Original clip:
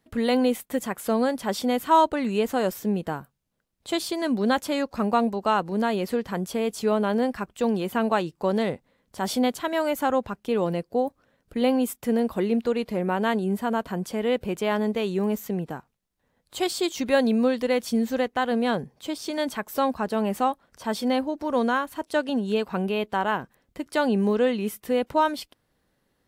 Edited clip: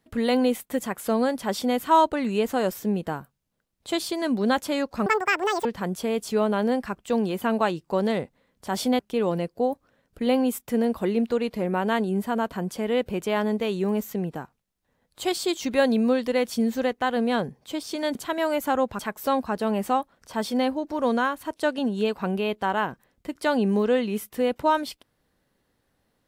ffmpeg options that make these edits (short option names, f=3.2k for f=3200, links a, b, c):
-filter_complex "[0:a]asplit=6[a][b][c][d][e][f];[a]atrim=end=5.064[g];[b]atrim=start=5.06:end=6.16,asetpts=PTS-STARTPTS,asetrate=82026,aresample=44100[h];[c]atrim=start=6.156:end=9.502[i];[d]atrim=start=10.338:end=19.502[j];[e]atrim=start=9.498:end=10.342[k];[f]atrim=start=19.498[l];[g][h]acrossfade=d=0.004:c1=hsin:c2=hsin[m];[m][i]acrossfade=d=0.004:c1=hsin:c2=hsin[n];[n][j]acrossfade=d=0.004:c1=hsin:c2=hsin[o];[o][k]acrossfade=d=0.004:c1=hsin:c2=hsin[p];[p][l]acrossfade=d=0.004:c1=hsin:c2=hsin"